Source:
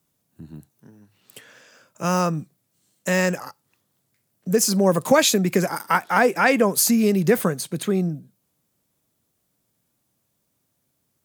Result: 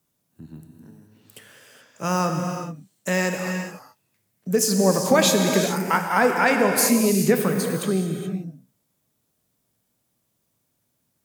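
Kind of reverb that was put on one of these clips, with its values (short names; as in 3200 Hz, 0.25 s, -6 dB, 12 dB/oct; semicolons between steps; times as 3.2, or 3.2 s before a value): non-linear reverb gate 0.45 s flat, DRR 3 dB; gain -2 dB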